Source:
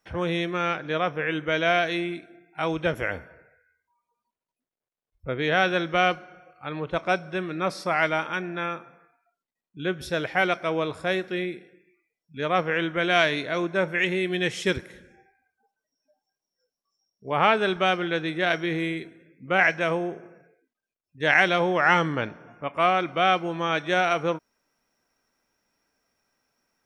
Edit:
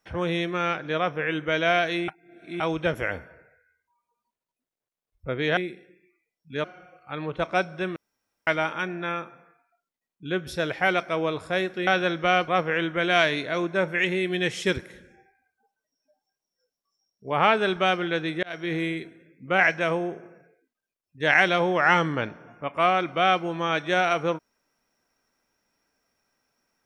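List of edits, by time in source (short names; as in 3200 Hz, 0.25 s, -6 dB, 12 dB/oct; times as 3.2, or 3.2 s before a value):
2.08–2.6 reverse
5.57–6.18 swap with 11.41–12.48
7.5–8.01 room tone
18.43–18.74 fade in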